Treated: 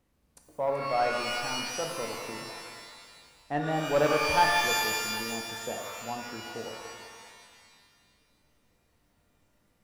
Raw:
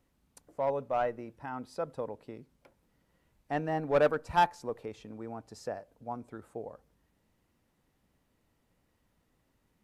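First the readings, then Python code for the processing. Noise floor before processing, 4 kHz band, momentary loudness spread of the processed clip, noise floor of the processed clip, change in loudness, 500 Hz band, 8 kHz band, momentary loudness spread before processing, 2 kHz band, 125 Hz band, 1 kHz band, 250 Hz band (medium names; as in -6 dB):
-75 dBFS, +17.0 dB, 20 LU, -70 dBFS, +4.5 dB, +2.0 dB, +21.0 dB, 17 LU, +10.5 dB, +2.5 dB, +3.5 dB, +3.0 dB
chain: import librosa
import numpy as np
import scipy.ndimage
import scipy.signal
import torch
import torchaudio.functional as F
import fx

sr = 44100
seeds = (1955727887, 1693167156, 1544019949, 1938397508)

y = fx.echo_thinned(x, sr, ms=381, feedback_pct=58, hz=1100.0, wet_db=-10.0)
y = fx.rev_shimmer(y, sr, seeds[0], rt60_s=1.7, semitones=12, shimmer_db=-2, drr_db=2.5)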